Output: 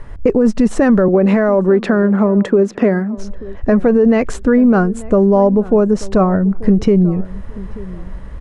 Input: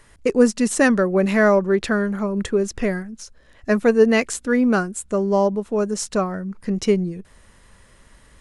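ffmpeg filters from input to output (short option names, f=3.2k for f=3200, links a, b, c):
-filter_complex "[0:a]aemphasis=mode=reproduction:type=riaa,asettb=1/sr,asplit=3[a][b][c];[a]atrim=end=1.084[d];[b]atrim=start=1.08:end=3.18,asetpts=PTS-STARTPTS,afade=t=in:d=0.004:c=qsin,afade=t=out:st=2.096:d=0.004:c=qsin,highpass=f=190:w=0.5412,highpass=f=190:w=1.3066[e];[c]atrim=start=3.176[f];[d][e]acrossfade=d=0.004:c1=hsin:c2=qsin[g];[g][f]acrossfade=d=0.004:c1=qsin:c2=hsin,equalizer=f=750:w=0.54:g=7.5,alimiter=limit=-6dB:level=0:latency=1:release=36,acompressor=threshold=-17dB:ratio=2,asplit=2[h][i];[i]adelay=886,lowpass=f=1.2k:p=1,volume=-18.5dB,asplit=2[j][k];[k]adelay=886,lowpass=f=1.2k:p=1,volume=0.26[l];[h][j][l]amix=inputs=3:normalize=0,volume=6dB"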